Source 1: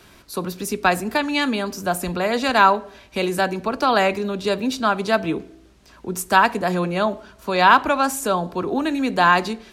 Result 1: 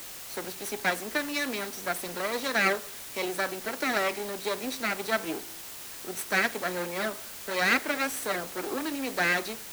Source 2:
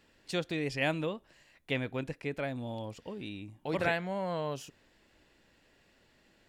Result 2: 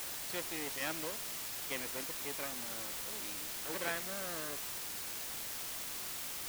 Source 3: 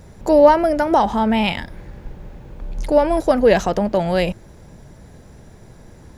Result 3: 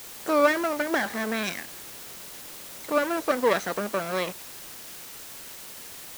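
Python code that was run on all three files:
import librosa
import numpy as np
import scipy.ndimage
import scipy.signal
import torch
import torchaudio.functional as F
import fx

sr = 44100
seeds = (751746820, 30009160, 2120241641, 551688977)

y = fx.lower_of_two(x, sr, delay_ms=0.51)
y = scipy.signal.sosfilt(scipy.signal.butter(2, 340.0, 'highpass', fs=sr, output='sos'), y)
y = fx.notch(y, sr, hz=3600.0, q=22.0)
y = fx.quant_dither(y, sr, seeds[0], bits=6, dither='triangular')
y = y * librosa.db_to_amplitude(-6.0)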